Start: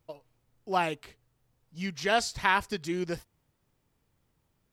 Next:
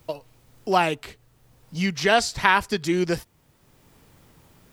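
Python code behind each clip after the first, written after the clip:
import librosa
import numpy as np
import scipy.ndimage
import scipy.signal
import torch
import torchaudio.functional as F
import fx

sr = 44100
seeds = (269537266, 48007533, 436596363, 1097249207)

y = fx.band_squash(x, sr, depth_pct=40)
y = y * 10.0 ** (8.5 / 20.0)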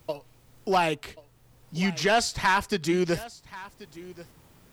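y = 10.0 ** (-12.5 / 20.0) * np.tanh(x / 10.0 ** (-12.5 / 20.0))
y = y + 10.0 ** (-18.5 / 20.0) * np.pad(y, (int(1083 * sr / 1000.0), 0))[:len(y)]
y = y * 10.0 ** (-1.0 / 20.0)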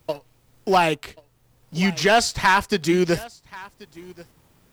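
y = fx.law_mismatch(x, sr, coded='A')
y = y * 10.0 ** (6.0 / 20.0)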